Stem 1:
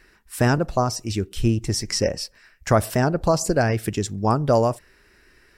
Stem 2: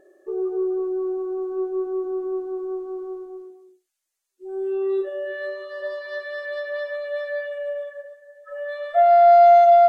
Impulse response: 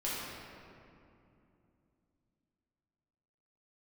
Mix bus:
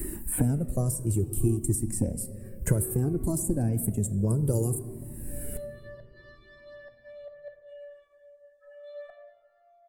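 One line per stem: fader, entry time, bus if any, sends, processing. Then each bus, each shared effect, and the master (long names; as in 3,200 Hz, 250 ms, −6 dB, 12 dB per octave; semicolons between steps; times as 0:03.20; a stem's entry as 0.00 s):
+0.5 dB, 0.00 s, send −16.5 dB, drawn EQ curve 330 Hz 0 dB, 850 Hz −19 dB, 5,500 Hz −26 dB, 8,600 Hz +9 dB; multiband upward and downward compressor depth 100%
−14.0 dB, 0.15 s, send −8 dB, low-shelf EQ 300 Hz +2.5 dB; gate with flip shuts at −21 dBFS, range −33 dB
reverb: on, RT60 2.7 s, pre-delay 5 ms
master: parametric band 1,400 Hz −4.5 dB 1.3 octaves; flanger whose copies keep moving one way falling 0.6 Hz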